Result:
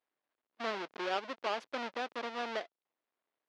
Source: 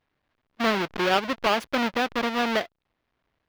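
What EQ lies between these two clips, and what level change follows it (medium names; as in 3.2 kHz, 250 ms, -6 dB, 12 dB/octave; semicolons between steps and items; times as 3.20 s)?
high-pass 190 Hz 12 dB/octave; tone controls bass -14 dB, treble +15 dB; tape spacing loss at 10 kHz 29 dB; -9.0 dB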